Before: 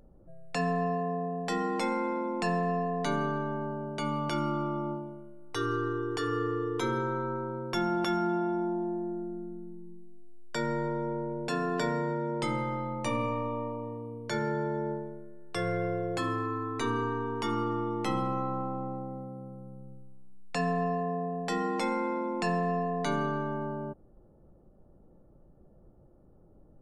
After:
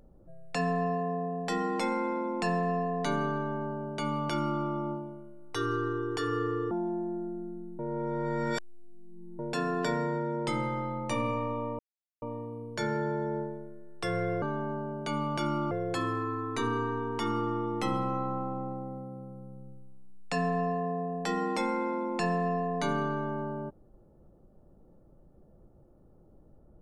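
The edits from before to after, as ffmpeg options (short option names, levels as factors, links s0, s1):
-filter_complex "[0:a]asplit=7[s0][s1][s2][s3][s4][s5][s6];[s0]atrim=end=6.712[s7];[s1]atrim=start=8.658:end=9.742[s8];[s2]atrim=start=9.738:end=11.342,asetpts=PTS-STARTPTS,areverse[s9];[s3]atrim=start=11.338:end=13.74,asetpts=PTS-STARTPTS,afade=t=out:st=2.398:d=0.004:c=hsin,apad=pad_dur=0.43[s10];[s4]atrim=start=13.74:end=15.942,asetpts=PTS-STARTPTS,afade=t=in:d=0.004:c=hsin[s11];[s5]atrim=start=3.338:end=4.632[s12];[s6]atrim=start=15.938[s13];[s7][s8]acrossfade=d=0.004:c1=hsin:c2=hsin[s14];[s14][s9]acrossfade=d=0.004:c1=hsin:c2=hsin[s15];[s10][s11]concat=n=2:v=0:a=1[s16];[s15][s16]acrossfade=d=0.004:c1=hsin:c2=hsin[s17];[s17][s12]acrossfade=d=0.004:c1=hsin:c2=hsin[s18];[s18][s13]acrossfade=d=0.004:c1=hsin:c2=hsin"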